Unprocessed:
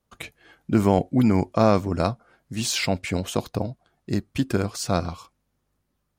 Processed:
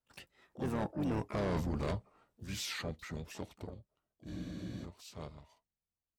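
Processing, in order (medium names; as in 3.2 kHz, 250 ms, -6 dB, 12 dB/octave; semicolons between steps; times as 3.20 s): Doppler pass-by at 1.34 s, 52 m/s, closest 4.3 m; harmony voices -7 st -6 dB, +12 st -14 dB; reverse; compression 12:1, threshold -34 dBFS, peak gain reduction 20.5 dB; reverse; saturation -37.5 dBFS, distortion -9 dB; spectral freeze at 4.29 s, 0.55 s; trim +8.5 dB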